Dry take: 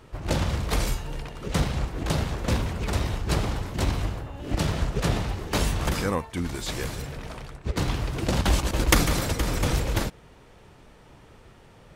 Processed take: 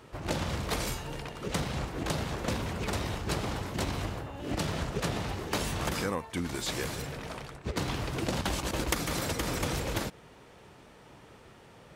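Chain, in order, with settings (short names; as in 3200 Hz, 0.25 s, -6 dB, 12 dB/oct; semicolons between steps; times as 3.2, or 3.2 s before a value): HPF 140 Hz 6 dB/oct; compressor 4:1, threshold -28 dBFS, peak gain reduction 12 dB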